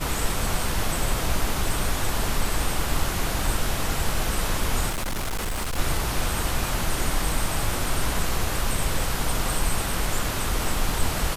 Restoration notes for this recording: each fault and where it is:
0:04.89–0:05.79: clipping −24 dBFS

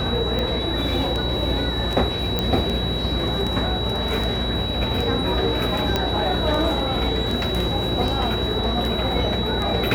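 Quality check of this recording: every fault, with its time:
mains buzz 60 Hz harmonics 19 −28 dBFS
scratch tick 78 rpm −14 dBFS
whistle 3,900 Hz −27 dBFS
0:02.39: click −8 dBFS
0:05.96: click −7 dBFS

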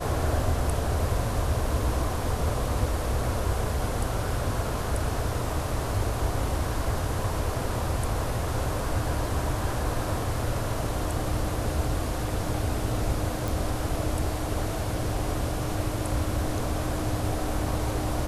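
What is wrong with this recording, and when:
0:13.48: click

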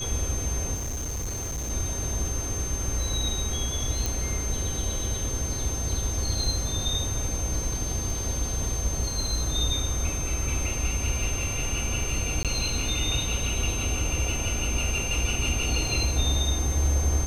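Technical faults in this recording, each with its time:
surface crackle 13 per second −33 dBFS
whistle 6,300 Hz −32 dBFS
0:00.74–0:01.71: clipping −28 dBFS
0:04.06: click
0:12.43–0:12.45: drop-out 17 ms

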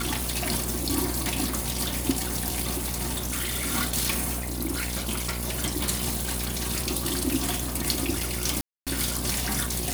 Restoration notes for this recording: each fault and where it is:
mains buzz 60 Hz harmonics 19 −33 dBFS
0:02.70–0:03.75: clipping −24.5 dBFS
0:08.61–0:08.87: drop-out 257 ms

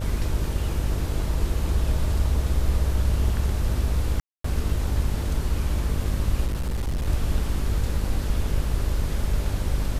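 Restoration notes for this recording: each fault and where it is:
mains buzz 50 Hz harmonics 12 −28 dBFS
0:04.20–0:04.44: drop-out 244 ms
0:06.46–0:07.07: clipping −22.5 dBFS

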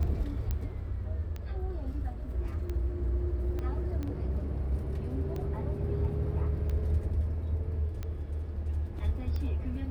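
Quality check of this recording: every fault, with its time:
scratch tick 45 rpm −25 dBFS
0:00.51: click −19 dBFS
0:03.59: click −25 dBFS

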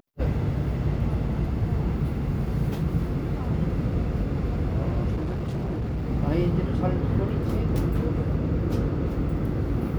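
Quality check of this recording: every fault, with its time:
0:05.15–0:06.06: clipping −25 dBFS

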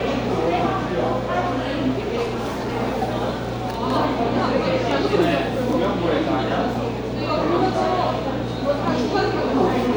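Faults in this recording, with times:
0:02.22–0:02.77: clipping −21.5 dBFS

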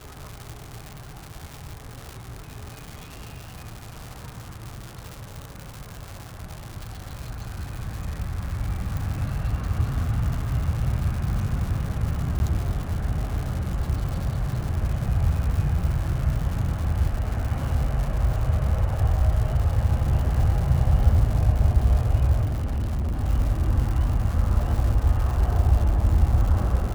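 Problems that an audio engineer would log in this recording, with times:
surface crackle 270 per second −30 dBFS
0:08.97: click
0:12.39–0:12.40: drop-out
0:22.44–0:23.20: clipping −22.5 dBFS

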